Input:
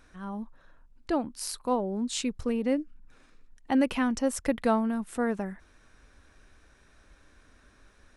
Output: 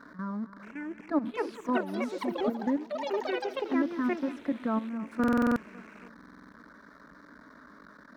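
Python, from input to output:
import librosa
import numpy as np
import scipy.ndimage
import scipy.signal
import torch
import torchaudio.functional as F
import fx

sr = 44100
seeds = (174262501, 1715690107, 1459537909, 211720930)

y = x + 0.5 * 10.0 ** (-36.5 / 20.0) * np.sign(x)
y = scipy.signal.sosfilt(scipy.signal.butter(2, 180.0, 'highpass', fs=sr, output='sos'), y)
y = fx.level_steps(y, sr, step_db=13)
y = fx.graphic_eq_31(y, sr, hz=(315, 500, 800, 3150), db=(10, -10, 4, -11))
y = fx.rider(y, sr, range_db=4, speed_s=0.5)
y = fx.air_absorb(y, sr, metres=330.0)
y = fx.fixed_phaser(y, sr, hz=520.0, stages=8)
y = fx.echo_feedback(y, sr, ms=276, feedback_pct=56, wet_db=-16)
y = fx.echo_pitch(y, sr, ms=627, semitones=7, count=3, db_per_echo=-3.0)
y = fx.buffer_glitch(y, sr, at_s=(5.19, 6.15), block=2048, repeats=7)
y = F.gain(torch.from_numpy(y), 2.0).numpy()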